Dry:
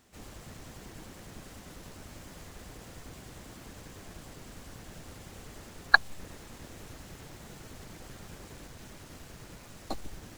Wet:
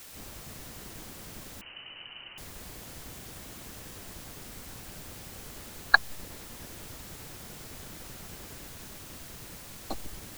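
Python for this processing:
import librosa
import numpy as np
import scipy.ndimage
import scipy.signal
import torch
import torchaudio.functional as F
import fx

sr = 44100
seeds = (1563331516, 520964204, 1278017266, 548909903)

y = fx.quant_dither(x, sr, seeds[0], bits=8, dither='triangular')
y = fx.freq_invert(y, sr, carrier_hz=3000, at=(1.61, 2.38))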